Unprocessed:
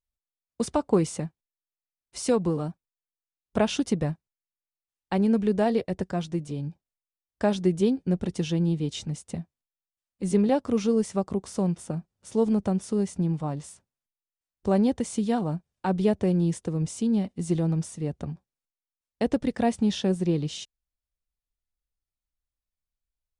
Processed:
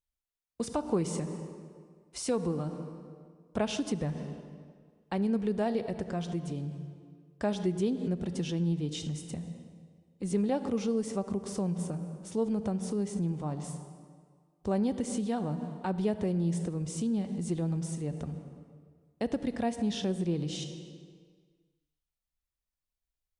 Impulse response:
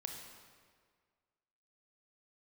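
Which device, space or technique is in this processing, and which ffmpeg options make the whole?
ducked reverb: -filter_complex "[0:a]asplit=3[link_01][link_02][link_03];[1:a]atrim=start_sample=2205[link_04];[link_02][link_04]afir=irnorm=-1:irlink=0[link_05];[link_03]apad=whole_len=1031501[link_06];[link_05][link_06]sidechaincompress=threshold=-34dB:ratio=4:attack=6.4:release=119,volume=5.5dB[link_07];[link_01][link_07]amix=inputs=2:normalize=0,volume=-9dB"

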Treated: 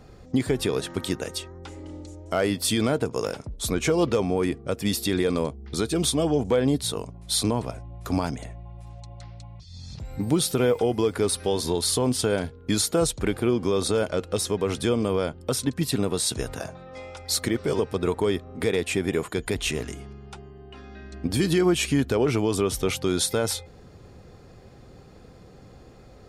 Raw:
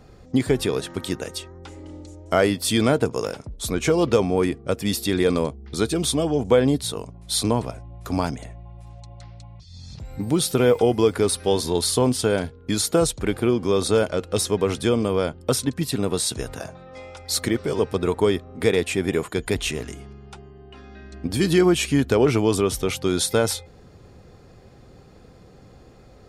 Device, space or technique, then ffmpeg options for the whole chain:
clipper into limiter: -af "asoftclip=type=hard:threshold=-7dB,alimiter=limit=-12.5dB:level=0:latency=1:release=182"

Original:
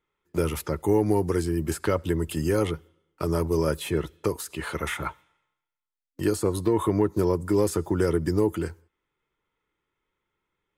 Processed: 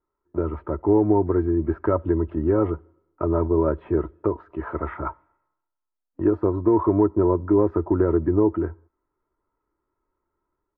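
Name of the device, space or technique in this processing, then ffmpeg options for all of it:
action camera in a waterproof case: -af "lowpass=frequency=1300:width=0.5412,lowpass=frequency=1300:width=1.3066,equalizer=frequency=170:width_type=o:width=0.99:gain=-2.5,aecho=1:1:3.1:0.46,dynaudnorm=framelen=460:gausssize=3:maxgain=3.5dB" -ar 22050 -c:a aac -b:a 48k

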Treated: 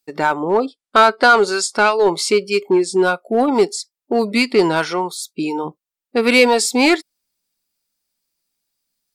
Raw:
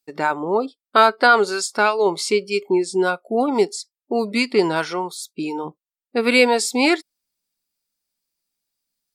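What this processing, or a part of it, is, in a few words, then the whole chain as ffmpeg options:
parallel distortion: -filter_complex "[0:a]asplit=2[link_01][link_02];[link_02]asoftclip=type=hard:threshold=-15.5dB,volume=-4dB[link_03];[link_01][link_03]amix=inputs=2:normalize=0,asettb=1/sr,asplit=3[link_04][link_05][link_06];[link_04]atrim=end=0.464[link_07];[link_05]atrim=start=0.46:end=1.99,asetpts=PTS-STARTPTS,afade=type=in:duration=0.004:curve=qsin,afade=type=out:start_time=1.526:duration=0.004:curve=qsin,lowpass=frequency=11000:width=0.5412,lowpass=frequency=11000:width=1.3066[link_08];[link_06]atrim=start=1.986[link_09];[link_07][link_08]acrossfade=duration=0.004:curve1=hsin:curve2=qsin[link_10];[link_10][link_09]acrossfade=duration=0.004:curve1=qsin:curve2=hsin"

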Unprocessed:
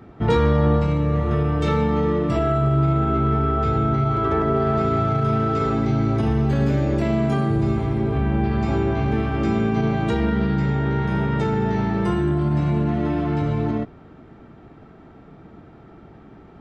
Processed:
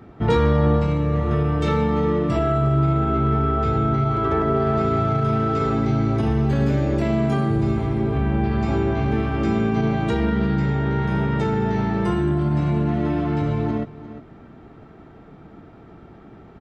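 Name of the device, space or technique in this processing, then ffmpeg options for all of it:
ducked delay: -filter_complex "[0:a]asplit=3[link_01][link_02][link_03];[link_02]adelay=350,volume=-7dB[link_04];[link_03]apad=whole_len=747579[link_05];[link_04][link_05]sidechaincompress=threshold=-35dB:ratio=5:attack=7.5:release=495[link_06];[link_01][link_06]amix=inputs=2:normalize=0"

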